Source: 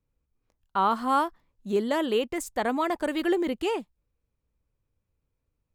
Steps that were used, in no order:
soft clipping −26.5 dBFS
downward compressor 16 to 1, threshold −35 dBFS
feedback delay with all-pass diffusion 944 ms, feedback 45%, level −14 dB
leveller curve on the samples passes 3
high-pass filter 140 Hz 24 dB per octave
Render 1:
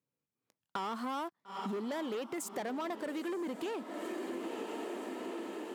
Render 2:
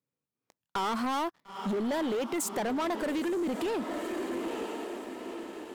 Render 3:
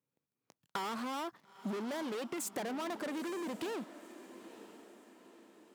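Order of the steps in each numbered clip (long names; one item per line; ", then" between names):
leveller curve on the samples, then feedback delay with all-pass diffusion, then downward compressor, then soft clipping, then high-pass filter
soft clipping, then feedback delay with all-pass diffusion, then downward compressor, then high-pass filter, then leveller curve on the samples
soft clipping, then leveller curve on the samples, then high-pass filter, then downward compressor, then feedback delay with all-pass diffusion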